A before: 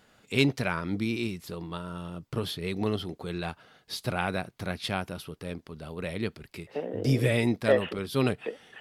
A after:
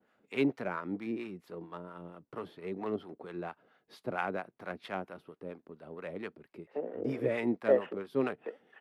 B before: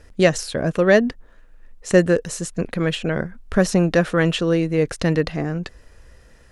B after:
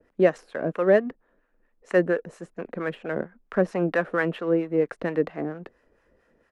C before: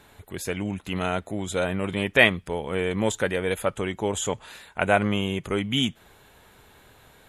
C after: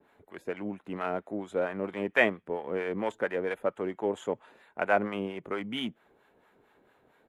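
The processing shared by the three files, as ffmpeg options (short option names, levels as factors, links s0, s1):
-filter_complex "[0:a]adynamicequalizer=threshold=0.00794:dfrequency=6400:dqfactor=0.77:tfrequency=6400:tqfactor=0.77:attack=5:release=100:ratio=0.375:range=2.5:mode=cutabove:tftype=bell,asplit=2[s0][s1];[s1]adynamicsmooth=sensitivity=5:basefreq=510,volume=0.891[s2];[s0][s2]amix=inputs=2:normalize=0,acrossover=split=210 2400:gain=0.0891 1 0.158[s3][s4][s5];[s3][s4][s5]amix=inputs=3:normalize=0,acrossover=split=690[s6][s7];[s6]aeval=exprs='val(0)*(1-0.7/2+0.7/2*cos(2*PI*4.4*n/s))':c=same[s8];[s7]aeval=exprs='val(0)*(1-0.7/2-0.7/2*cos(2*PI*4.4*n/s))':c=same[s9];[s8][s9]amix=inputs=2:normalize=0,aresample=32000,aresample=44100,volume=0.531"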